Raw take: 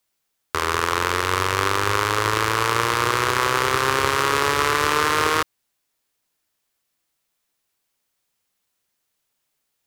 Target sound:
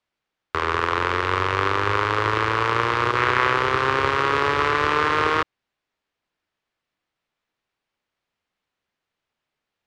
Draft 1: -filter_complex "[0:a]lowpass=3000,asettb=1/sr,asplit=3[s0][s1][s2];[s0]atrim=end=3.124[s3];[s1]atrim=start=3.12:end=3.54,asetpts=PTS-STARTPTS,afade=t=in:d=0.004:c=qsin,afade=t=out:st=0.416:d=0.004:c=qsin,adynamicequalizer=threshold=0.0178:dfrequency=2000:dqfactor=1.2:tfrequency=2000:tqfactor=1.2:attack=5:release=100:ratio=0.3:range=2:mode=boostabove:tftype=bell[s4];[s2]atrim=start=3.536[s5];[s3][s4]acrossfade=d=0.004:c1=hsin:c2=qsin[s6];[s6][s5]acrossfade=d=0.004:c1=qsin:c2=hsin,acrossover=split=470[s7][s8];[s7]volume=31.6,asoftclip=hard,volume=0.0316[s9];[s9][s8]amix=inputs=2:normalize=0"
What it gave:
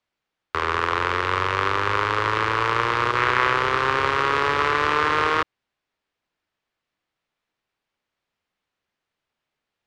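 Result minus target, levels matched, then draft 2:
overload inside the chain: distortion +28 dB
-filter_complex "[0:a]lowpass=3000,asettb=1/sr,asplit=3[s0][s1][s2];[s0]atrim=end=3.124[s3];[s1]atrim=start=3.12:end=3.54,asetpts=PTS-STARTPTS,afade=t=in:d=0.004:c=qsin,afade=t=out:st=0.416:d=0.004:c=qsin,adynamicequalizer=threshold=0.0178:dfrequency=2000:dqfactor=1.2:tfrequency=2000:tqfactor=1.2:attack=5:release=100:ratio=0.3:range=2:mode=boostabove:tftype=bell[s4];[s2]atrim=start=3.536[s5];[s3][s4]acrossfade=d=0.004:c1=hsin:c2=qsin[s6];[s6][s5]acrossfade=d=0.004:c1=qsin:c2=hsin,acrossover=split=470[s7][s8];[s7]volume=8.91,asoftclip=hard,volume=0.112[s9];[s9][s8]amix=inputs=2:normalize=0"

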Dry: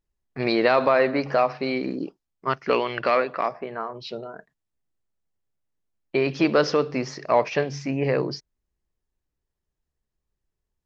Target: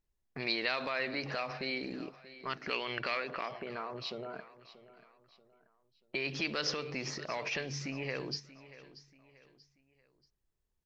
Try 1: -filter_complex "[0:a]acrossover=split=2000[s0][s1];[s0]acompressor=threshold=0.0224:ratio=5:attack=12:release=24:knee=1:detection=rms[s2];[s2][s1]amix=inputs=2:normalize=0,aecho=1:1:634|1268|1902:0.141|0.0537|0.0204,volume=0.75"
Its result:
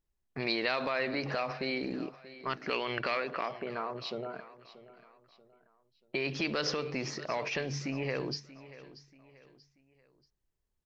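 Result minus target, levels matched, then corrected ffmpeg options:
compression: peak gain reduction -5 dB
-filter_complex "[0:a]acrossover=split=2000[s0][s1];[s0]acompressor=threshold=0.0112:ratio=5:attack=12:release=24:knee=1:detection=rms[s2];[s2][s1]amix=inputs=2:normalize=0,aecho=1:1:634|1268|1902:0.141|0.0537|0.0204,volume=0.75"

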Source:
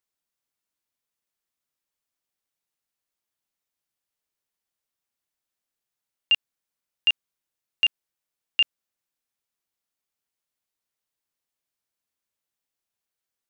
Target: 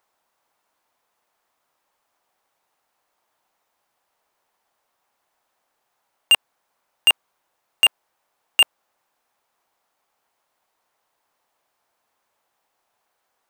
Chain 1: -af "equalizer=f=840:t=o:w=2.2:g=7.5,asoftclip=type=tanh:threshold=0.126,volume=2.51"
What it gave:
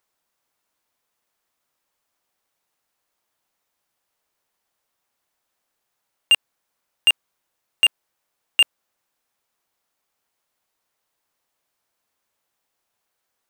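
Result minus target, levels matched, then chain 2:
1 kHz band -6.5 dB
-af "equalizer=f=840:t=o:w=2.2:g=17.5,asoftclip=type=tanh:threshold=0.126,volume=2.51"

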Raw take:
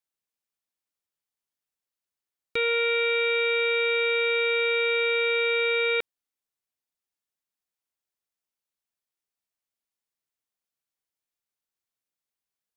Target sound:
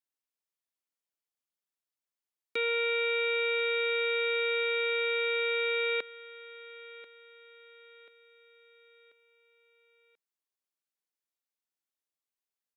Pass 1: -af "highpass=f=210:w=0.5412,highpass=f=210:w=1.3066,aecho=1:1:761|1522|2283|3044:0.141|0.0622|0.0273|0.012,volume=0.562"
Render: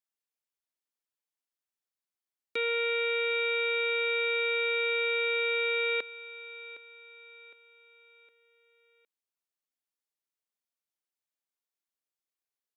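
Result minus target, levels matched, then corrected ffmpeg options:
echo 276 ms early
-af "highpass=f=210:w=0.5412,highpass=f=210:w=1.3066,aecho=1:1:1037|2074|3111|4148:0.141|0.0622|0.0273|0.012,volume=0.562"

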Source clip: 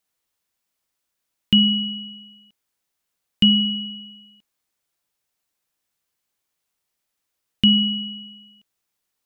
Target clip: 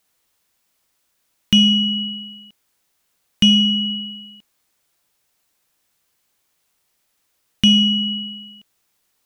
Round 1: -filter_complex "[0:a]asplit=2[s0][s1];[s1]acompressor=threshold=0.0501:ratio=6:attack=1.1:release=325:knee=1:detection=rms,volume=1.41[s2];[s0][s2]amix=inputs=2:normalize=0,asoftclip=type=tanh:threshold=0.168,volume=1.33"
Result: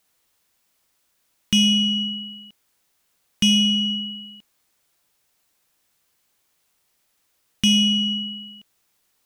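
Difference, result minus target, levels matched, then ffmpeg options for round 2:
saturation: distortion +9 dB
-filter_complex "[0:a]asplit=2[s0][s1];[s1]acompressor=threshold=0.0501:ratio=6:attack=1.1:release=325:knee=1:detection=rms,volume=1.41[s2];[s0][s2]amix=inputs=2:normalize=0,asoftclip=type=tanh:threshold=0.422,volume=1.33"

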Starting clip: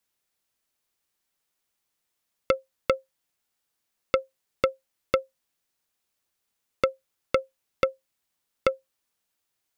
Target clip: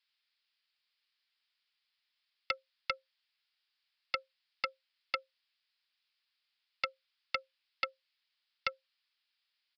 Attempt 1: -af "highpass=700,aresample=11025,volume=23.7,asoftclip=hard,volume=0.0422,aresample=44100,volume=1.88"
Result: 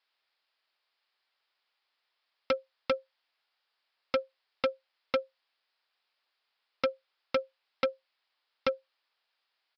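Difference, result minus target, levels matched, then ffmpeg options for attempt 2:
500 Hz band +11.5 dB
-af "highpass=2200,aresample=11025,volume=23.7,asoftclip=hard,volume=0.0422,aresample=44100,volume=1.88"

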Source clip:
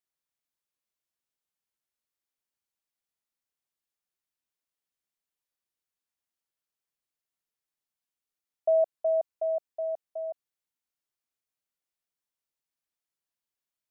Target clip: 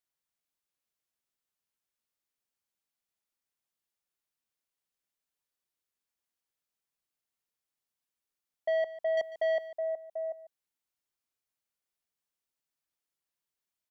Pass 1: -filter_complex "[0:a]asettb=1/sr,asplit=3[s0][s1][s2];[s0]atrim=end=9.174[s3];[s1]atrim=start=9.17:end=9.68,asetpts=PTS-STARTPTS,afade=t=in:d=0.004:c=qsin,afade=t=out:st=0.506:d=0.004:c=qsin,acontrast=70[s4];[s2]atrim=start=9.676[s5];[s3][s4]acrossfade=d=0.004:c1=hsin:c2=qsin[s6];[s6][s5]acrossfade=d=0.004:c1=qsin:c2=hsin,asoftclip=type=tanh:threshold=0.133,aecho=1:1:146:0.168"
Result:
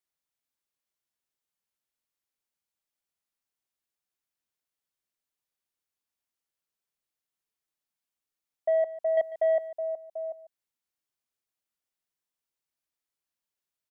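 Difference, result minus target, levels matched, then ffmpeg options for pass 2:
saturation: distortion -9 dB
-filter_complex "[0:a]asettb=1/sr,asplit=3[s0][s1][s2];[s0]atrim=end=9.174[s3];[s1]atrim=start=9.17:end=9.68,asetpts=PTS-STARTPTS,afade=t=in:d=0.004:c=qsin,afade=t=out:st=0.506:d=0.004:c=qsin,acontrast=70[s4];[s2]atrim=start=9.676[s5];[s3][s4]acrossfade=d=0.004:c1=hsin:c2=qsin[s6];[s6][s5]acrossfade=d=0.004:c1=qsin:c2=hsin,asoftclip=type=tanh:threshold=0.0531,aecho=1:1:146:0.168"

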